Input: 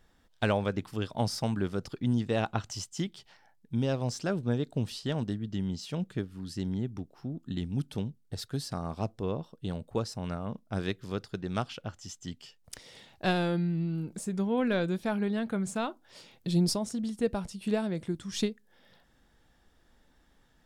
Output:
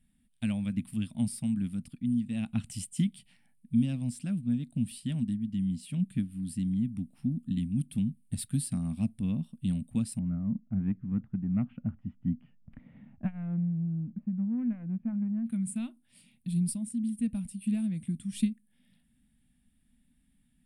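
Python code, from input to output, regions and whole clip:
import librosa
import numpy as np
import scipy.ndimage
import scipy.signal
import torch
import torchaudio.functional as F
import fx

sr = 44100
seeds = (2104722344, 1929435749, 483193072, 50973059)

y = fx.chain(x, sr, fx.lowpass(hz=1400.0, slope=24),
    fx.transformer_sat(knee_hz=380.0), at=(10.19, 15.46))
y = fx.curve_eq(y, sr, hz=(110.0, 240.0, 400.0, 620.0, 950.0, 1500.0, 2400.0, 6300.0, 9300.0, 14000.0), db=(0, 10, -24, -15, -18, -14, 0, -14, 14, -5))
y = fx.rider(y, sr, range_db=10, speed_s=0.5)
y = y * 10.0 ** (-4.0 / 20.0)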